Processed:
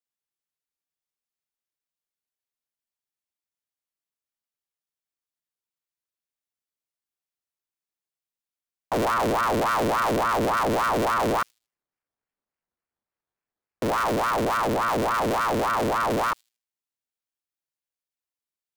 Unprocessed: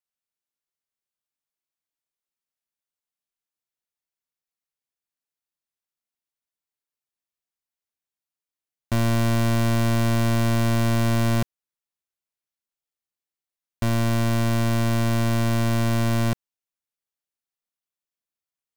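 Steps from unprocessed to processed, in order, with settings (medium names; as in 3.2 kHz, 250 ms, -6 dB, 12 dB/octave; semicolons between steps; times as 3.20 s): 11.41–14.13 s: sample-rate reducer 2.5 kHz, jitter 0%; feedback echo behind a high-pass 78 ms, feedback 31%, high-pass 4.1 kHz, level -22.5 dB; ring modulator with a swept carrier 800 Hz, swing 60%, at 3.5 Hz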